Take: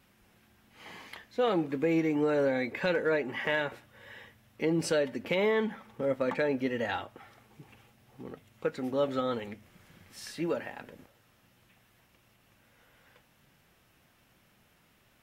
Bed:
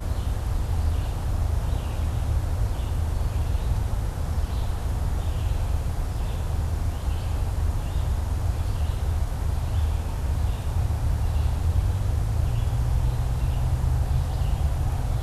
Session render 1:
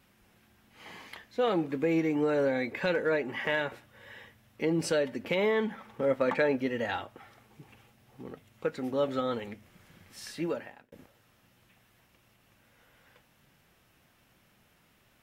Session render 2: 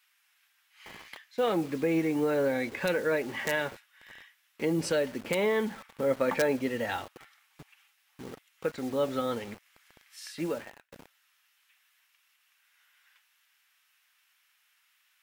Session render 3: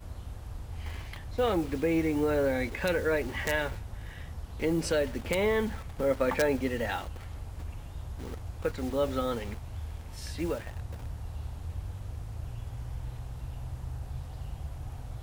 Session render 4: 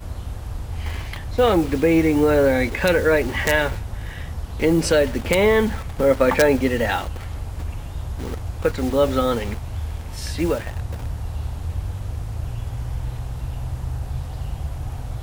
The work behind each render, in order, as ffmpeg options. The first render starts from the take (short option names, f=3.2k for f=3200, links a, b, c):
-filter_complex "[0:a]asettb=1/sr,asplit=3[a][b][c];[a]atrim=end=5.784[d];[b]atrim=start=5.78:end=6.57,asetpts=PTS-STARTPTS,afade=t=in:d=0.004:c=qsin,afade=t=out:st=0.786:d=0.004:c=qsin,equalizer=f=1.3k:w=0.34:g=4[e];[c]atrim=start=6.566[f];[d][e]acrossfade=d=0.004:c1=hsin:c2=qsin[g];[g][f]acrossfade=d=0.004:c1=qsin:c2=hsin,asplit=2[h][i];[h]atrim=end=10.92,asetpts=PTS-STARTPTS,afade=t=out:st=10.44:d=0.48[j];[i]atrim=start=10.92,asetpts=PTS-STARTPTS,afade=t=in:d=0.004:c=hsin[k];[j][k]concat=n=2:v=0:a=1"
-filter_complex "[0:a]acrossover=split=1200[a][b];[a]acrusher=bits=7:mix=0:aa=0.000001[c];[b]aeval=exprs='(mod(12.6*val(0)+1,2)-1)/12.6':c=same[d];[c][d]amix=inputs=2:normalize=0"
-filter_complex "[1:a]volume=-14.5dB[a];[0:a][a]amix=inputs=2:normalize=0"
-af "volume=10.5dB"